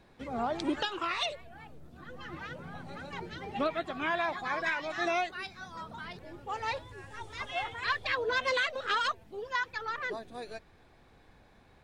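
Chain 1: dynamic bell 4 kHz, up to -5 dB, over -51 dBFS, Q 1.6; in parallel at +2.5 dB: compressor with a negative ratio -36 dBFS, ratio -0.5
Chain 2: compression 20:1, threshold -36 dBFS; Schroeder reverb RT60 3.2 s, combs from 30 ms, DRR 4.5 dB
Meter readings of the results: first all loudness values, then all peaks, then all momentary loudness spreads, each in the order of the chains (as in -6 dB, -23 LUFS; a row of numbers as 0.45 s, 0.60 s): -30.0 LUFS, -40.0 LUFS; -14.5 dBFS, -24.5 dBFS; 8 LU, 10 LU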